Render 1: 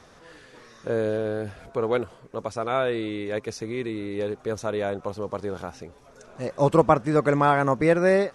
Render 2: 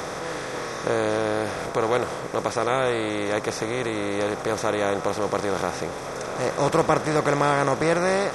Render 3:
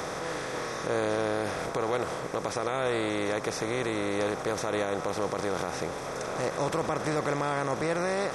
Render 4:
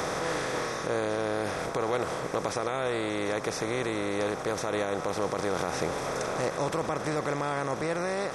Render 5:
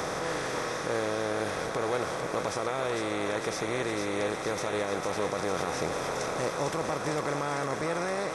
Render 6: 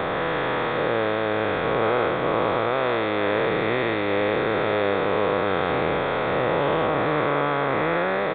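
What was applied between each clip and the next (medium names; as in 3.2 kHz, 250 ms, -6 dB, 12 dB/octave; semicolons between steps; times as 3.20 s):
spectral levelling over time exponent 0.4; treble shelf 3.5 kHz +11.5 dB; trim -6 dB
peak limiter -15.5 dBFS, peak gain reduction 8.5 dB; trim -3 dB
gain riding 0.5 s
thinning echo 452 ms, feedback 73%, high-pass 580 Hz, level -5 dB; trim -1.5 dB
every event in the spectrogram widened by 240 ms; resampled via 8 kHz; trim +3 dB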